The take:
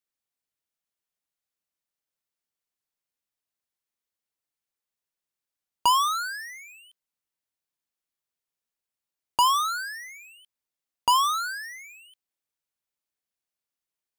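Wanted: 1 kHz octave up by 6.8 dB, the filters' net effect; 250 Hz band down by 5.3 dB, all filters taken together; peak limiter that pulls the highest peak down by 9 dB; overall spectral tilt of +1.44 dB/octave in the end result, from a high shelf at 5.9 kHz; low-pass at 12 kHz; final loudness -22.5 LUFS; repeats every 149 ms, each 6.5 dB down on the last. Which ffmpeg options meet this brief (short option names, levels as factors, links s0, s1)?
-af "lowpass=12000,equalizer=f=250:t=o:g=-8,equalizer=f=1000:t=o:g=7.5,highshelf=f=5900:g=4,alimiter=limit=0.141:level=0:latency=1,aecho=1:1:149|298|447|596|745|894:0.473|0.222|0.105|0.0491|0.0231|0.0109"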